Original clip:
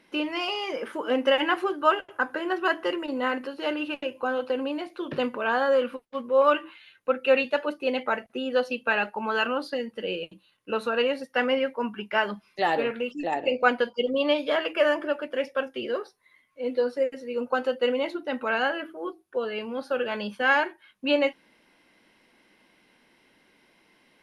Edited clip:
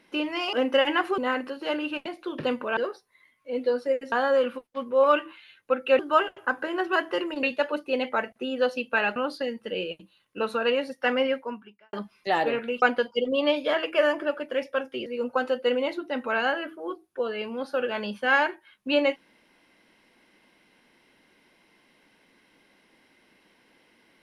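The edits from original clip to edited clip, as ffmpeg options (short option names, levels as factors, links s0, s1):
-filter_complex "[0:a]asplit=12[s0][s1][s2][s3][s4][s5][s6][s7][s8][s9][s10][s11];[s0]atrim=end=0.532[s12];[s1]atrim=start=1.058:end=1.712[s13];[s2]atrim=start=3.148:end=4.032[s14];[s3]atrim=start=4.788:end=5.502[s15];[s4]atrim=start=15.878:end=17.232[s16];[s5]atrim=start=5.498:end=7.372[s17];[s6]atrim=start=1.708:end=3.152[s18];[s7]atrim=start=7.368:end=9.102[s19];[s8]atrim=start=9.478:end=12.25,asetpts=PTS-STARTPTS,afade=t=out:st=2.192:d=0.58:c=qua[s20];[s9]atrim=start=12.25:end=13.142,asetpts=PTS-STARTPTS,afade=t=in:d=0.004:c=hsin[s21];[s10]atrim=start=13.638:end=15.882[s22];[s11]atrim=start=17.228[s23];[s12][s13]acrossfade=d=0.004:c1=hsin:c2=hsin[s24];[s24][s14]acrossfade=d=0.004:c1=hsin:c2=hsin[s25];[s25][s15]acrossfade=d=0.004:c1=hsin:c2=hsin[s26];[s26][s16]acrossfade=d=0.004:c1=hsin:c2=hsin[s27];[s27][s17]acrossfade=d=0.004:c1=hsin:c2=hsin[s28];[s28][s18]acrossfade=d=0.004:c1=hsin:c2=hsin[s29];[s29][s19]acrossfade=d=0.004:c1=hsin:c2=hsin[s30];[s20][s21]concat=n=2:v=0:a=1[s31];[s30][s31]acrossfade=d=0.004:c1=hsin:c2=hsin[s32];[s32][s22]acrossfade=d=0.004:c1=hsin:c2=hsin[s33];[s33][s23]acrossfade=d=0.004:c1=hsin:c2=hsin"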